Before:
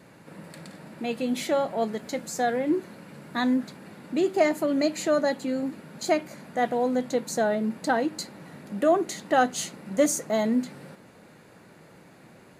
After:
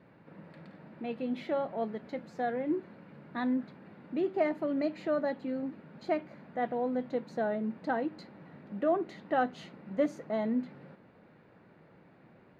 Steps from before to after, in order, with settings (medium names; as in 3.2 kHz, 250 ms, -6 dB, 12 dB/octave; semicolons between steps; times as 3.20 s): distance through air 360 m; trim -6 dB